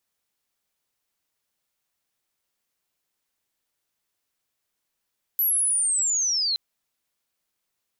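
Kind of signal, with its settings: chirp linear 12000 Hz -> 4000 Hz -19 dBFS -> -21.5 dBFS 1.17 s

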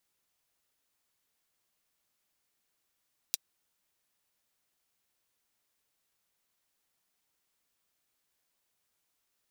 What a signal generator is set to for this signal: closed hi-hat, high-pass 4000 Hz, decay 0.03 s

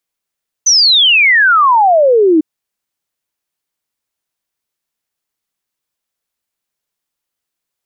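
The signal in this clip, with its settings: log sweep 6200 Hz -> 300 Hz 1.75 s -5.5 dBFS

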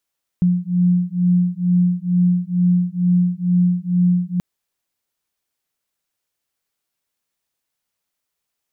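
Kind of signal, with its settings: beating tones 177 Hz, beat 2.2 Hz, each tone -17 dBFS 3.98 s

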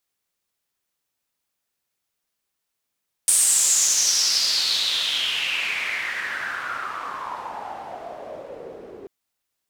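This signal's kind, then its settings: swept filtered noise pink, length 5.79 s bandpass, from 9100 Hz, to 390 Hz, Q 5.7, exponential, gain ramp -23.5 dB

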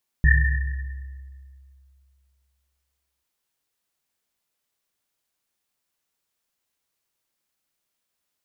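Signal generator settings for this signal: Risset drum length 2.99 s, pitch 67 Hz, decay 2.55 s, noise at 1800 Hz, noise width 130 Hz, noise 30%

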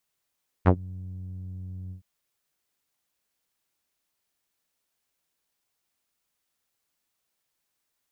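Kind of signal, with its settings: synth note saw F#2 12 dB/oct, low-pass 140 Hz, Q 1.7, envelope 4 oct, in 0.12 s, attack 31 ms, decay 0.07 s, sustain -24 dB, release 0.11 s, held 1.26 s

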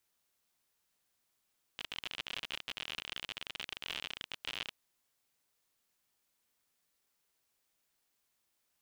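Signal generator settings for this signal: random clicks 56/s -23.5 dBFS 2.97 s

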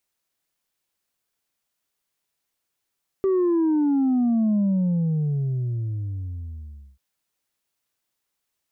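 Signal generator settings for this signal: sub drop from 390 Hz, over 3.74 s, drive 2 dB, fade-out 2.43 s, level -18 dB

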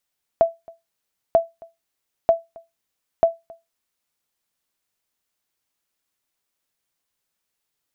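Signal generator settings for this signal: sonar ping 666 Hz, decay 0.20 s, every 0.94 s, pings 4, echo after 0.27 s, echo -26 dB -6.5 dBFS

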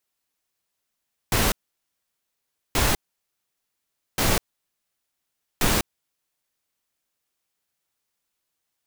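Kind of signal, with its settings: noise bursts pink, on 0.20 s, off 1.23 s, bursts 4, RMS -20.5 dBFS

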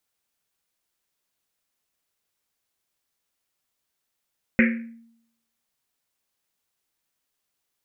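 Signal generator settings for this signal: Risset drum, pitch 230 Hz, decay 0.75 s, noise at 2000 Hz, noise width 810 Hz, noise 35%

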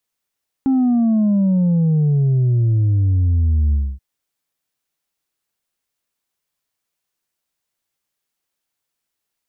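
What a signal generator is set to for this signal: sub drop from 270 Hz, over 3.33 s, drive 2.5 dB, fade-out 0.26 s, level -13 dB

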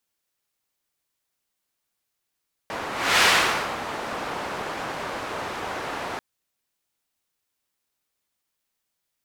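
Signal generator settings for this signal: whoosh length 3.49 s, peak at 0.52, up 0.33 s, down 0.61 s, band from 920 Hz, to 2200 Hz, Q 0.81, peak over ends 14 dB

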